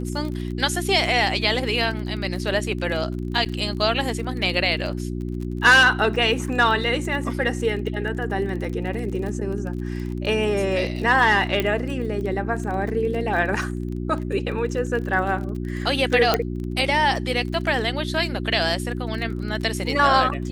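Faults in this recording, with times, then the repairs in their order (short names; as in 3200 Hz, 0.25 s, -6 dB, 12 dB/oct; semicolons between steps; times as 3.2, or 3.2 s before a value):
crackle 28/s -30 dBFS
hum 60 Hz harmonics 6 -28 dBFS
3.45–3.46 gap 7.8 ms
11.6 pop -9 dBFS
16.34 pop -4 dBFS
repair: de-click; de-hum 60 Hz, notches 6; interpolate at 3.45, 7.8 ms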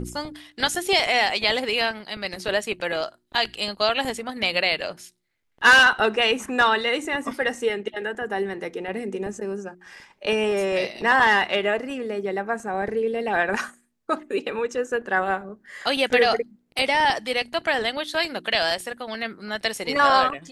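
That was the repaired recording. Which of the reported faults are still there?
none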